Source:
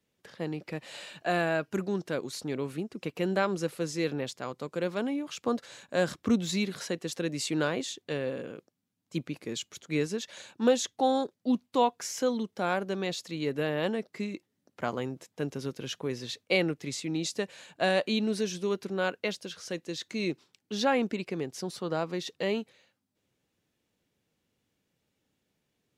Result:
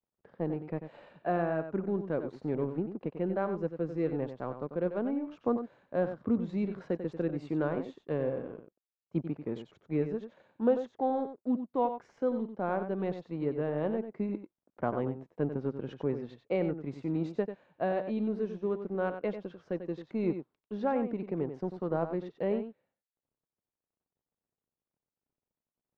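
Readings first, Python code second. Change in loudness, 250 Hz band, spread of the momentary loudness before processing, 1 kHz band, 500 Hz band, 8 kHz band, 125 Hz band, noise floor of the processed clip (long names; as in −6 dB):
−2.0 dB, −1.0 dB, 10 LU, −3.5 dB, −1.0 dB, below −30 dB, 0.0 dB, below −85 dBFS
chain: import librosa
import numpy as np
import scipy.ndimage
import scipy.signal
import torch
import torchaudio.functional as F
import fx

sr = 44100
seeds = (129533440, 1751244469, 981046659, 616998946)

y = fx.law_mismatch(x, sr, coded='A')
y = scipy.signal.sosfilt(scipy.signal.butter(2, 1000.0, 'lowpass', fs=sr, output='sos'), y)
y = fx.rider(y, sr, range_db=3, speed_s=0.5)
y = y + 10.0 ** (-9.5 / 20.0) * np.pad(y, (int(93 * sr / 1000.0), 0))[:len(y)]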